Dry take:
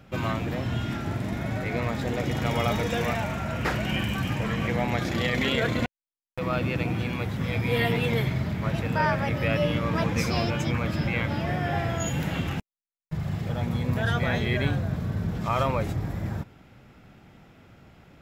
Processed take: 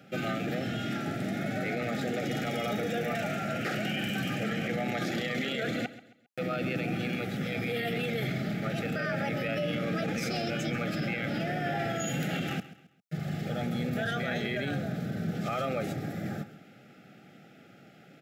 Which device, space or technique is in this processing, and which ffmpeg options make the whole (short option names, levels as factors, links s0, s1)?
PA system with an anti-feedback notch: -filter_complex "[0:a]asettb=1/sr,asplit=3[s0][s1][s2];[s0]atrim=end=2.734[s3];[s1]atrim=start=2.73:end=3.15,asetpts=PTS-STARTPTS,afade=t=in:d=0.004:c=qsin,afade=t=out:st=0.416:d=0.004:c=qsin,equalizer=f=5700:t=o:w=2.6:g=-5.5[s4];[s2]atrim=start=3.146[s5];[s3][s4]acrossfade=d=0.004:c1=hsin:c2=qsin[s6];[s6][s5]acrossfade=d=0.004:c1=qsin:c2=hsin,highpass=f=150:w=0.5412,highpass=f=150:w=1.3066,asuperstop=centerf=1000:order=20:qfactor=2.9,alimiter=limit=0.0668:level=0:latency=1:release=19,aecho=1:1:134|268|402:0.158|0.0571|0.0205"